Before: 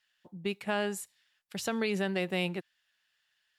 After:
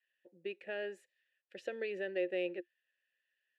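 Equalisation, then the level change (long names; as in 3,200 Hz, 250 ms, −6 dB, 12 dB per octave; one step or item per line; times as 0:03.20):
formant filter e
parametric band 350 Hz +14 dB 0.27 octaves
parametric band 1,400 Hz +3 dB 0.76 octaves
+1.5 dB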